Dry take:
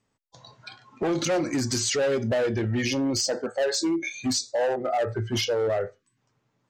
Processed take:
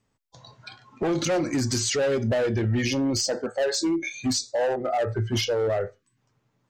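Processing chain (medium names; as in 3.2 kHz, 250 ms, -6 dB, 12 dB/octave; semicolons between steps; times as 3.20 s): bass shelf 110 Hz +7 dB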